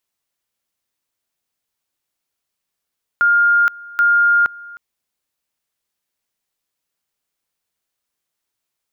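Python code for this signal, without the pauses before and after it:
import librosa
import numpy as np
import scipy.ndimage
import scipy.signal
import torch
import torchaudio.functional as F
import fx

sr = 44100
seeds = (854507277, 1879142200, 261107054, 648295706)

y = fx.two_level_tone(sr, hz=1410.0, level_db=-10.0, drop_db=22.5, high_s=0.47, low_s=0.31, rounds=2)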